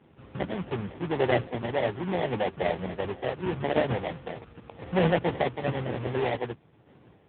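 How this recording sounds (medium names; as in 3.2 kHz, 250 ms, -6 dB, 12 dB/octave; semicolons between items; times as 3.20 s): a quantiser's noise floor 10-bit, dither none; random-step tremolo; aliases and images of a low sample rate 1.3 kHz, jitter 20%; AMR-NB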